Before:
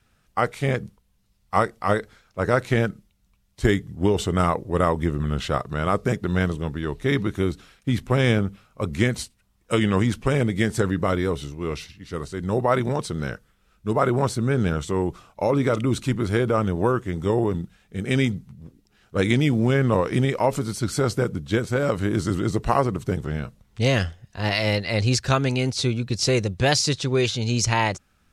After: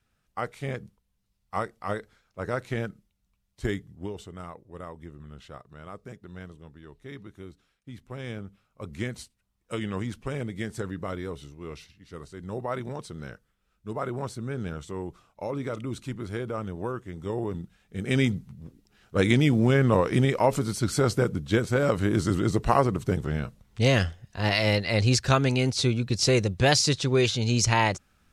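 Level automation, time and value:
0:03.76 −9.5 dB
0:04.34 −20 dB
0:07.94 −20 dB
0:08.99 −11 dB
0:17.13 −11 dB
0:18.34 −1 dB

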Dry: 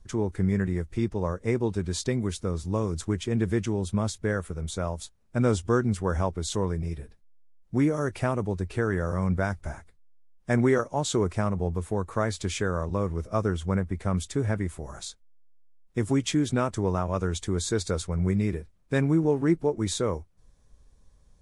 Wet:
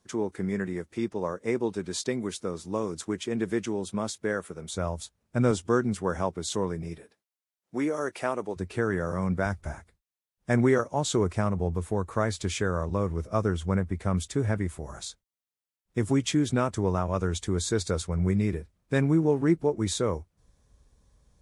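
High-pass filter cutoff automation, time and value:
220 Hz
from 0:04.74 58 Hz
from 0:05.51 150 Hz
from 0:06.98 340 Hz
from 0:08.56 120 Hz
from 0:09.46 41 Hz

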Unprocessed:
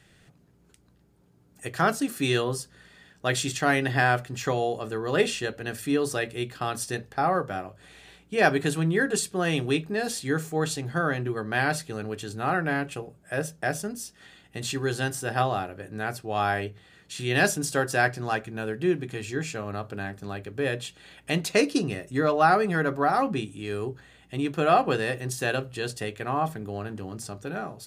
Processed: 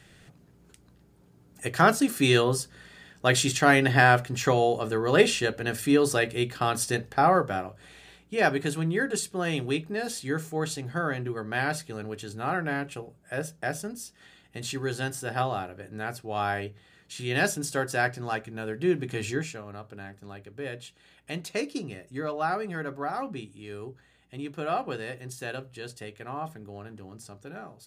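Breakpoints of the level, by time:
0:07.31 +3.5 dB
0:08.52 −3 dB
0:18.64 −3 dB
0:19.28 +3.5 dB
0:19.63 −8.5 dB

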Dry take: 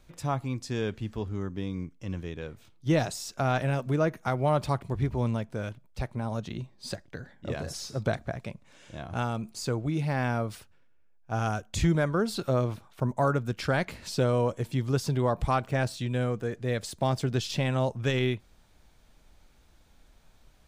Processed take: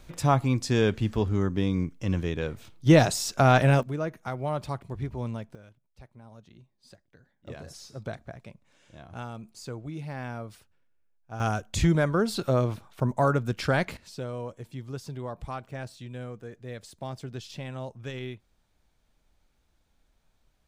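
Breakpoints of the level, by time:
+7.5 dB
from 0:03.83 −5 dB
from 0:05.55 −17.5 dB
from 0:07.47 −8 dB
from 0:11.40 +2 dB
from 0:13.97 −10 dB

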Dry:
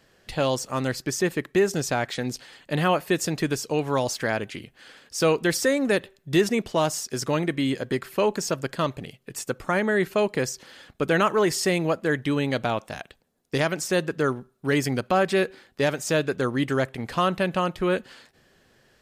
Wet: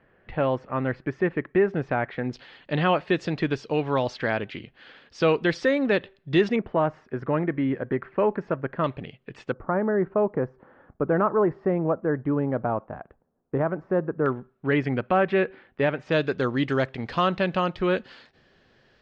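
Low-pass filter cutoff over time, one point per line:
low-pass filter 24 dB per octave
2,200 Hz
from 0:02.33 3,800 Hz
from 0:06.56 1,900 Hz
from 0:08.84 3,200 Hz
from 0:09.52 1,300 Hz
from 0:14.26 2,700 Hz
from 0:16.12 4,800 Hz

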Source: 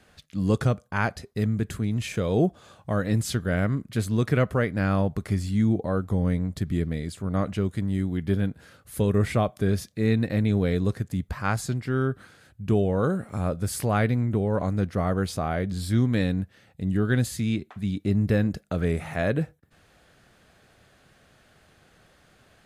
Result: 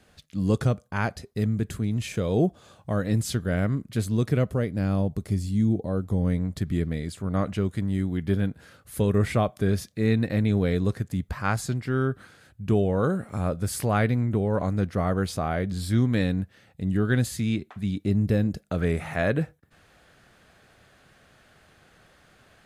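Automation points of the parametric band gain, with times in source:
parametric band 1,500 Hz 2 octaves
0:04.01 −3 dB
0:04.57 −10.5 dB
0:05.87 −10.5 dB
0:06.46 +0.5 dB
0:17.92 +0.5 dB
0:18.46 −7.5 dB
0:18.82 +2.5 dB

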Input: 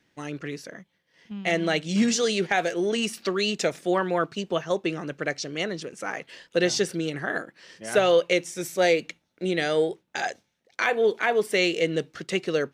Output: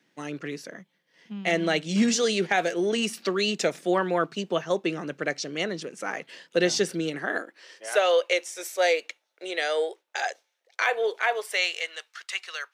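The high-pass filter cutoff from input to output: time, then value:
high-pass filter 24 dB per octave
0:07.06 150 Hz
0:07.91 480 Hz
0:11.17 480 Hz
0:12.10 1,000 Hz

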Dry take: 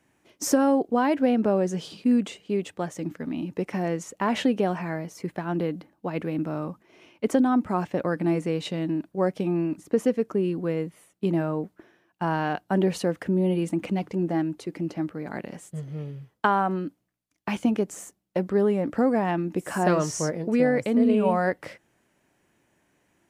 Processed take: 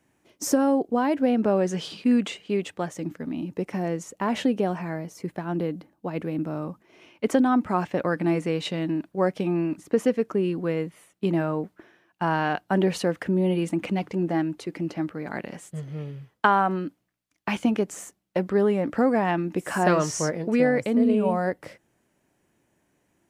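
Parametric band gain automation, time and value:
parametric band 2,100 Hz 2.8 octaves
0:01.20 −2.5 dB
0:01.74 +6.5 dB
0:02.44 +6.5 dB
0:03.26 −2.5 dB
0:06.59 −2.5 dB
0:07.30 +4 dB
0:20.55 +4 dB
0:21.28 −4.5 dB

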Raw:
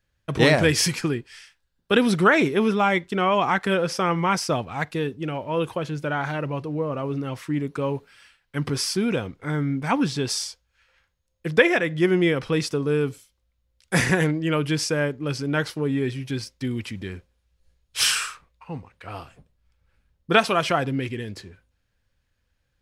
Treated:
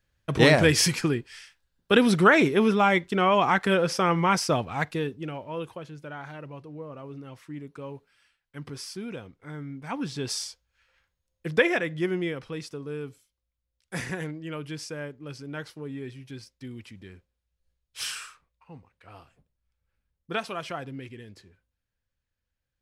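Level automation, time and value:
0:04.79 −0.5 dB
0:05.93 −13 dB
0:09.79 −13 dB
0:10.32 −4.5 dB
0:11.78 −4.5 dB
0:12.54 −12.5 dB

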